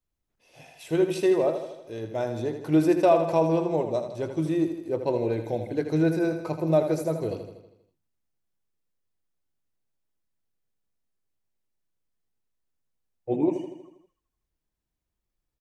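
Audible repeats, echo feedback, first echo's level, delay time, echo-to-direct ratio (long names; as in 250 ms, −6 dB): 6, 56%, −8.5 dB, 80 ms, −7.0 dB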